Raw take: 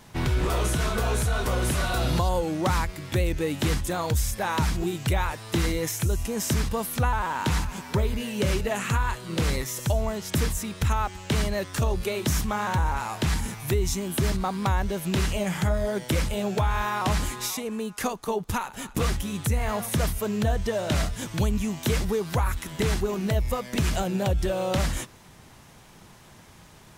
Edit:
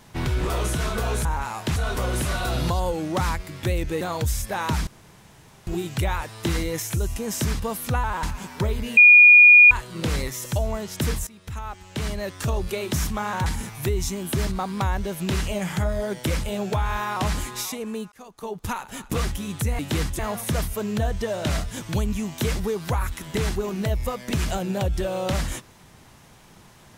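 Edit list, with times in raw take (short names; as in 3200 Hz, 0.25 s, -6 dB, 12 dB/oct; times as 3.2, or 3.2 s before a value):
3.5–3.9 move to 19.64
4.76 insert room tone 0.80 s
7.32–7.57 cut
8.31–9.05 bleep 2440 Hz -7 dBFS
10.61–11.87 fade in, from -17 dB
12.8–13.31 move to 1.25
17.97–18.62 fade in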